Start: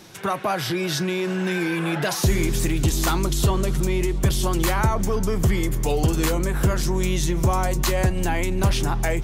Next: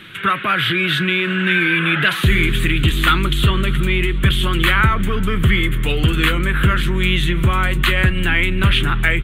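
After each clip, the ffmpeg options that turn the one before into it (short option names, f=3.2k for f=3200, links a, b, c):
-af "firequalizer=gain_entry='entry(200,0);entry(790,-14);entry(1300,8);entry(3300,10);entry(5300,-23);entry(8600,-8)':delay=0.05:min_phase=1,volume=5dB"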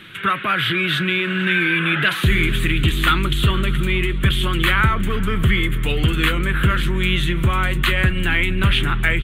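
-af "aecho=1:1:466:0.106,volume=-2dB"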